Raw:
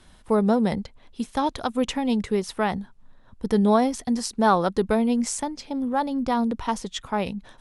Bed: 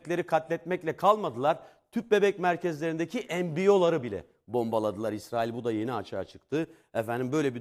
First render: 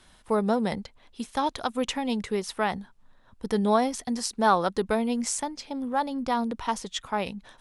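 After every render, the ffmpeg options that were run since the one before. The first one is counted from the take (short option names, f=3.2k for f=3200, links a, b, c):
-af "lowshelf=f=460:g=-7"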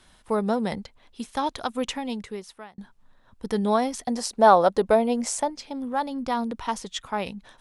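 -filter_complex "[0:a]asettb=1/sr,asplit=3[a][b][c];[a]atrim=end=4.074[d];[b]atrim=start=4.07:end=5.5,asetpts=PTS-STARTPTS,afade=t=in:d=0.004:c=qsin,afade=t=out:st=1.426:d=0.004:c=qsin,equalizer=f=620:w=1.4:g=10.5[e];[c]atrim=start=5.496[f];[d][e]acrossfade=d=0.004:c1=hsin:c2=qsin[g];[g][f]acrossfade=d=0.004:c1=qsin:c2=hsin,asplit=2[h][i];[h]atrim=end=2.78,asetpts=PTS-STARTPTS,afade=t=out:st=1.84:d=0.94[j];[i]atrim=start=2.78,asetpts=PTS-STARTPTS,afade=t=in:d=0.004:c=hsin[k];[j][k]concat=n=2:v=0:a=1"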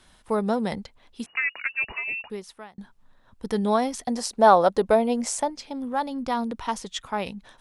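-filter_complex "[0:a]asettb=1/sr,asplit=3[a][b][c];[a]atrim=end=1.264[d];[b]atrim=start=1.26:end=2.3,asetpts=PTS-STARTPTS,afade=t=in:d=0.004:c=qsin,afade=t=out:st=1.036:d=0.004:c=qsin,lowpass=f=2.5k:t=q:w=0.5098,lowpass=f=2.5k:t=q:w=0.6013,lowpass=f=2.5k:t=q:w=0.9,lowpass=f=2.5k:t=q:w=2.563,afreqshift=-2900[e];[c]atrim=start=2.296[f];[d][e]acrossfade=d=0.004:c1=hsin:c2=qsin[g];[g][f]acrossfade=d=0.004:c1=qsin:c2=hsin"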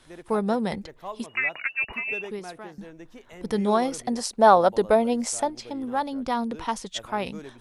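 -filter_complex "[1:a]volume=-14.5dB[a];[0:a][a]amix=inputs=2:normalize=0"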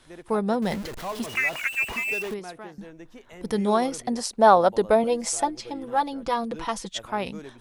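-filter_complex "[0:a]asettb=1/sr,asplit=3[a][b][c];[a]atrim=end=0.624[d];[b]atrim=start=0.62:end=2.34,asetpts=PTS-STARTPTS,afade=t=in:d=0.004:c=qsin,afade=t=out:st=1.716:d=0.004:c=qsin,aeval=exprs='val(0)+0.5*0.0237*sgn(val(0))':c=same[e];[c]atrim=start=2.336[f];[d][e]acrossfade=d=0.004:c1=hsin:c2=qsin[g];[g][f]acrossfade=d=0.004:c1=qsin:c2=hsin,asettb=1/sr,asplit=3[h][i][j];[h]atrim=end=3.414[k];[i]atrim=start=3.41:end=3.87,asetpts=PTS-STARTPTS,afade=t=in:d=0.004:c=qsin,afade=t=out:st=0.456:d=0.004:c=qsin,highshelf=f=8.6k:g=6[l];[j]atrim=start=3.866[m];[k][l]acrossfade=d=0.004:c1=hsin:c2=qsin[n];[n][m]acrossfade=d=0.004:c1=qsin:c2=hsin,asettb=1/sr,asplit=3[o][p][q];[o]atrim=end=5.034[r];[p]atrim=start=5.03:end=6.89,asetpts=PTS-STARTPTS,afade=t=in:d=0.004:c=qsin,afade=t=out:st=1.856:d=0.004:c=qsin,aecho=1:1:6:0.7,atrim=end_sample=82026[s];[q]atrim=start=6.886[t];[r][s]acrossfade=d=0.004:c1=hsin:c2=qsin[u];[u][t]acrossfade=d=0.004:c1=qsin:c2=hsin"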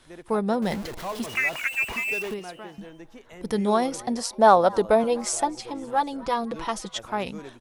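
-filter_complex "[0:a]asplit=4[a][b][c][d];[b]adelay=255,afreqshift=140,volume=-23.5dB[e];[c]adelay=510,afreqshift=280,volume=-29dB[f];[d]adelay=765,afreqshift=420,volume=-34.5dB[g];[a][e][f][g]amix=inputs=4:normalize=0"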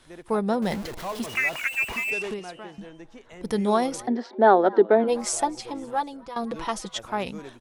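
-filter_complex "[0:a]asplit=3[a][b][c];[a]afade=t=out:st=2.1:d=0.02[d];[b]lowpass=f=9.8k:w=0.5412,lowpass=f=9.8k:w=1.3066,afade=t=in:st=2.1:d=0.02,afade=t=out:st=3.42:d=0.02[e];[c]afade=t=in:st=3.42:d=0.02[f];[d][e][f]amix=inputs=3:normalize=0,asplit=3[g][h][i];[g]afade=t=out:st=4.06:d=0.02[j];[h]highpass=f=210:w=0.5412,highpass=f=210:w=1.3066,equalizer=f=260:t=q:w=4:g=5,equalizer=f=380:t=q:w=4:g=10,equalizer=f=550:t=q:w=4:g=-4,equalizer=f=1.1k:t=q:w=4:g=-8,equalizer=f=1.7k:t=q:w=4:g=5,equalizer=f=2.6k:t=q:w=4:g=-9,lowpass=f=3.2k:w=0.5412,lowpass=f=3.2k:w=1.3066,afade=t=in:st=4.06:d=0.02,afade=t=out:st=5.07:d=0.02[k];[i]afade=t=in:st=5.07:d=0.02[l];[j][k][l]amix=inputs=3:normalize=0,asplit=2[m][n];[m]atrim=end=6.36,asetpts=PTS-STARTPTS,afade=t=out:st=5.78:d=0.58:silence=0.16788[o];[n]atrim=start=6.36,asetpts=PTS-STARTPTS,afade=t=in:d=0.004:c=hsin:silence=0.16788[p];[o][p]concat=n=2:v=0:a=1"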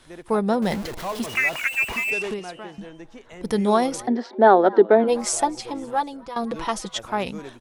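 -af "volume=3dB,alimiter=limit=-3dB:level=0:latency=1"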